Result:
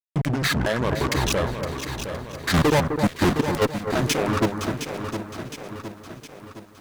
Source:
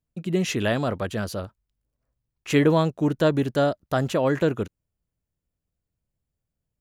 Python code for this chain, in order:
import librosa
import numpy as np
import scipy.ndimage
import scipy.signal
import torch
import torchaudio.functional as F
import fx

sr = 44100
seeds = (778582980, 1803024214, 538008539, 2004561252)

y = fx.pitch_ramps(x, sr, semitones=-10.0, every_ms=659)
y = fx.peak_eq(y, sr, hz=2700.0, db=-5.5, octaves=0.36)
y = fx.level_steps(y, sr, step_db=20)
y = fx.dereverb_blind(y, sr, rt60_s=1.3)
y = fx.fuzz(y, sr, gain_db=41.0, gate_db=-45.0)
y = fx.echo_alternate(y, sr, ms=257, hz=1900.0, feedback_pct=61, wet_db=-7)
y = fx.echo_crushed(y, sr, ms=713, feedback_pct=55, bits=8, wet_db=-9)
y = y * librosa.db_to_amplitude(-3.0)